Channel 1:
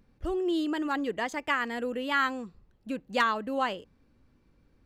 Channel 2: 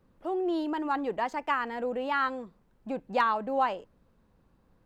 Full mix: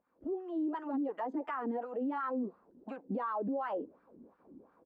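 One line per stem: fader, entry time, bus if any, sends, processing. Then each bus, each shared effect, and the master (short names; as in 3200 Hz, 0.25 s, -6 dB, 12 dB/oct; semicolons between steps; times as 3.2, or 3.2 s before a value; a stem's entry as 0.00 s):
-0.5 dB, 0.00 s, no send, compressor 5:1, threshold -36 dBFS, peak gain reduction 14 dB; auto duck -7 dB, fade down 0.70 s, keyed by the second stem
-0.5 dB, 11 ms, no send, EQ curve 140 Hz 0 dB, 270 Hz +11 dB, 3400 Hz -10 dB; compressor 12:1, threshold -33 dBFS, peak gain reduction 16 dB; gate with hold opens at -53 dBFS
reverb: off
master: AGC gain up to 12 dB; wah 2.8 Hz 260–1400 Hz, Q 3; limiter -28.5 dBFS, peak gain reduction 10.5 dB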